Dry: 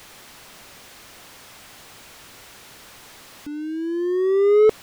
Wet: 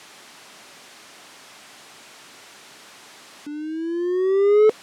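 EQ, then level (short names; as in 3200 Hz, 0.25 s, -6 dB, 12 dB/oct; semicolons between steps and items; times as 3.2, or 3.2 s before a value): HPF 200 Hz 12 dB/oct; LPF 10000 Hz 12 dB/oct; notch 500 Hz, Q 12; 0.0 dB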